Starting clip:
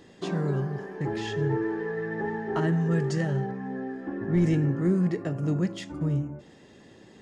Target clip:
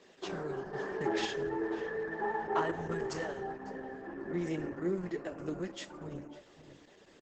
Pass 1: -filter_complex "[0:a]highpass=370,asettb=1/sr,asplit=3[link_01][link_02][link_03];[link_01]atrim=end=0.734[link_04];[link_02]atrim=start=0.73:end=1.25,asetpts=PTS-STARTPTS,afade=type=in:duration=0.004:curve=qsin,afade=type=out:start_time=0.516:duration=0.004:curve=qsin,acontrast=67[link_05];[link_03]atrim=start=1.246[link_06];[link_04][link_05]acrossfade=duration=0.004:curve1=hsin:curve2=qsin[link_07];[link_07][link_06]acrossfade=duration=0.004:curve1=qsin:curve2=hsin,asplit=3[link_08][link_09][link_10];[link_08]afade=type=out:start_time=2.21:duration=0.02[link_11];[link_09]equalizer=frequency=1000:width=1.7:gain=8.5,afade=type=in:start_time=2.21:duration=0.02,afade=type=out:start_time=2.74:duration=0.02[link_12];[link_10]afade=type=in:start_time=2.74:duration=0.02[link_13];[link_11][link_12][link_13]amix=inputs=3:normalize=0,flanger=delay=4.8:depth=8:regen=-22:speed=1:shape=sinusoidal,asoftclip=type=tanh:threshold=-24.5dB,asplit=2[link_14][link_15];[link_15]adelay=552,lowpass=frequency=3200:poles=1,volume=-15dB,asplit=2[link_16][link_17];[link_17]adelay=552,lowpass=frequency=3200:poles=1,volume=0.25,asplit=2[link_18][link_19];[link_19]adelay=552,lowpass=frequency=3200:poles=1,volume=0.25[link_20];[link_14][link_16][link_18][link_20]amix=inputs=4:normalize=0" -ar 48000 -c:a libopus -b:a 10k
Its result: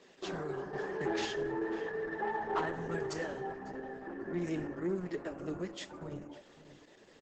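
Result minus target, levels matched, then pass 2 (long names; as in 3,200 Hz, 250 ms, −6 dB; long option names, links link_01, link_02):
soft clipping: distortion +15 dB
-filter_complex "[0:a]highpass=370,asettb=1/sr,asplit=3[link_01][link_02][link_03];[link_01]atrim=end=0.734[link_04];[link_02]atrim=start=0.73:end=1.25,asetpts=PTS-STARTPTS,afade=type=in:duration=0.004:curve=qsin,afade=type=out:start_time=0.516:duration=0.004:curve=qsin,acontrast=67[link_05];[link_03]atrim=start=1.246[link_06];[link_04][link_05]acrossfade=duration=0.004:curve1=hsin:curve2=qsin[link_07];[link_07][link_06]acrossfade=duration=0.004:curve1=qsin:curve2=hsin,asplit=3[link_08][link_09][link_10];[link_08]afade=type=out:start_time=2.21:duration=0.02[link_11];[link_09]equalizer=frequency=1000:width=1.7:gain=8.5,afade=type=in:start_time=2.21:duration=0.02,afade=type=out:start_time=2.74:duration=0.02[link_12];[link_10]afade=type=in:start_time=2.74:duration=0.02[link_13];[link_11][link_12][link_13]amix=inputs=3:normalize=0,flanger=delay=4.8:depth=8:regen=-22:speed=1:shape=sinusoidal,asoftclip=type=tanh:threshold=-15dB,asplit=2[link_14][link_15];[link_15]adelay=552,lowpass=frequency=3200:poles=1,volume=-15dB,asplit=2[link_16][link_17];[link_17]adelay=552,lowpass=frequency=3200:poles=1,volume=0.25,asplit=2[link_18][link_19];[link_19]adelay=552,lowpass=frequency=3200:poles=1,volume=0.25[link_20];[link_14][link_16][link_18][link_20]amix=inputs=4:normalize=0" -ar 48000 -c:a libopus -b:a 10k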